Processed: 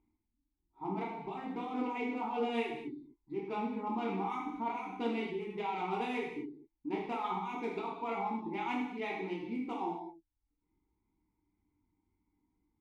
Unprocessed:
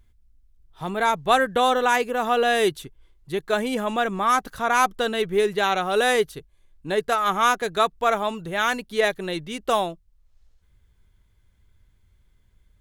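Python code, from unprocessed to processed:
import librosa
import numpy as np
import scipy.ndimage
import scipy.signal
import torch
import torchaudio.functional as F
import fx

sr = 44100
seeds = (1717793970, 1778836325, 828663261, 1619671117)

y = fx.wiener(x, sr, points=15)
y = fx.vowel_filter(y, sr, vowel='u')
y = fx.over_compress(y, sr, threshold_db=-41.0, ratio=-1.0)
y = fx.dereverb_blind(y, sr, rt60_s=0.74)
y = fx.rev_gated(y, sr, seeds[0], gate_ms=290, shape='falling', drr_db=-5.0)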